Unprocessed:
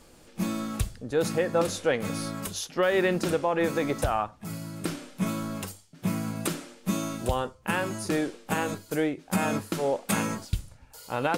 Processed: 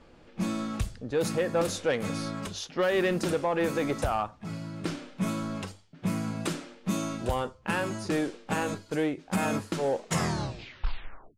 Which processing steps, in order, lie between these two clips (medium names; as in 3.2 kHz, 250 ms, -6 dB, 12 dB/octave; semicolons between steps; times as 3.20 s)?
tape stop on the ending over 1.50 s; level-controlled noise filter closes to 2.9 kHz, open at -21.5 dBFS; saturation -18.5 dBFS, distortion -18 dB